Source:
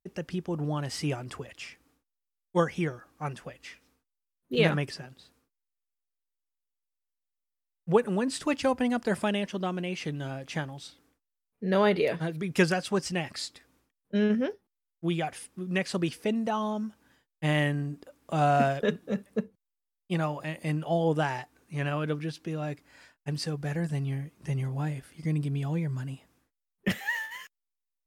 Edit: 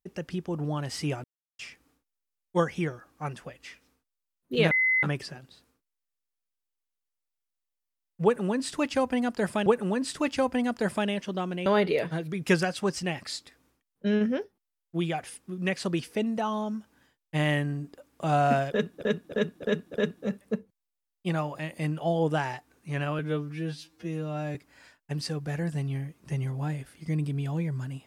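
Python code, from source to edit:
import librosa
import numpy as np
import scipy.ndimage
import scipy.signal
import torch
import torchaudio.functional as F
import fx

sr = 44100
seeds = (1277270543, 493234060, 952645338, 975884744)

y = fx.edit(x, sr, fx.silence(start_s=1.24, length_s=0.35),
    fx.insert_tone(at_s=4.71, length_s=0.32, hz=2040.0, db=-20.5),
    fx.repeat(start_s=7.92, length_s=1.42, count=2),
    fx.cut(start_s=9.92, length_s=1.83),
    fx.repeat(start_s=18.79, length_s=0.31, count=5),
    fx.stretch_span(start_s=22.04, length_s=0.68, factor=2.0), tone=tone)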